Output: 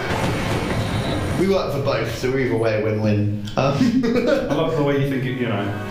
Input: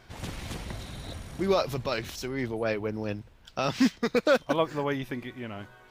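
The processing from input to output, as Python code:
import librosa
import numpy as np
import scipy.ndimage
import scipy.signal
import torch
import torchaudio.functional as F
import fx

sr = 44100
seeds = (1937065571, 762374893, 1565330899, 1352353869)

y = fx.low_shelf(x, sr, hz=330.0, db=11.0, at=(3.04, 5.04))
y = fx.room_shoebox(y, sr, seeds[0], volume_m3=70.0, walls='mixed', distance_m=0.87)
y = fx.band_squash(y, sr, depth_pct=100)
y = y * librosa.db_to_amplitude(1.5)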